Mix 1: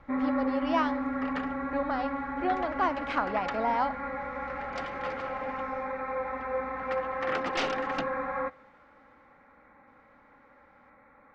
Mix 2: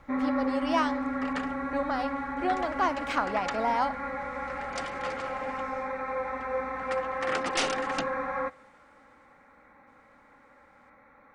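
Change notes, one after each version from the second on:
master: remove distance through air 170 m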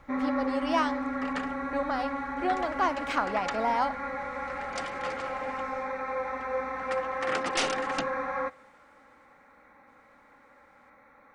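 first sound: add tone controls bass -3 dB, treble +6 dB

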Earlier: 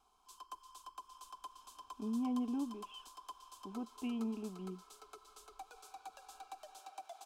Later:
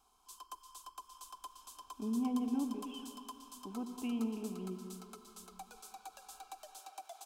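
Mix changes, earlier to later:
background: add treble shelf 6.4 kHz +10 dB; reverb: on, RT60 2.4 s

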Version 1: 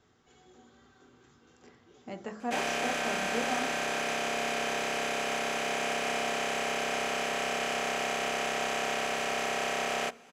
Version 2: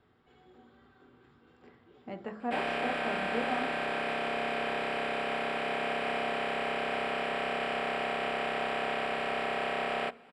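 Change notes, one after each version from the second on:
master: add boxcar filter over 7 samples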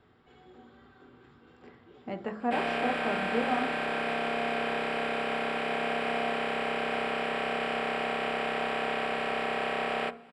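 speech +4.5 dB; background: send +9.0 dB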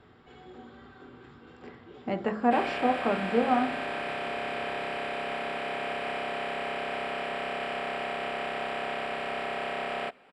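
speech +6.0 dB; background: send off

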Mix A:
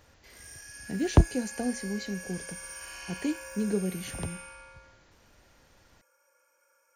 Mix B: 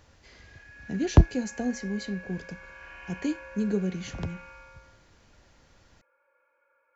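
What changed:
speech: add tone controls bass +3 dB, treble +1 dB; background: add steep low-pass 2.6 kHz

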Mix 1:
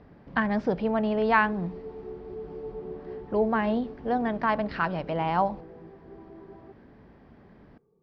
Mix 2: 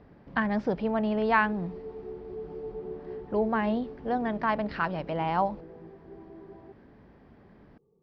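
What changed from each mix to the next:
speech: send off; background: add low-pass 1 kHz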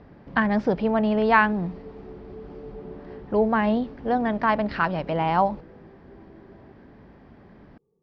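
speech +5.5 dB; background -3.5 dB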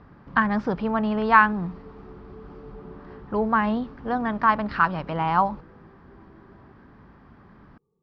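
master: add FFT filter 140 Hz 0 dB, 640 Hz -6 dB, 1.2 kHz +7 dB, 2 kHz -2 dB

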